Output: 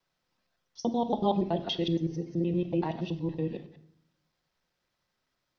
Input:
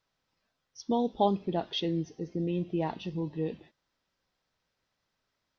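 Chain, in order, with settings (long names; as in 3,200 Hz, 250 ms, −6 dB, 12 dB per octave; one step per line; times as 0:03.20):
reversed piece by piece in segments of 94 ms
rectangular room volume 980 cubic metres, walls furnished, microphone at 0.92 metres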